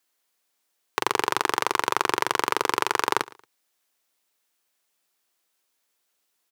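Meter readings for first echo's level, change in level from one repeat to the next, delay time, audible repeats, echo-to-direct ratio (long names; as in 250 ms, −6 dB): −22.0 dB, −10.5 dB, 114 ms, 2, −21.5 dB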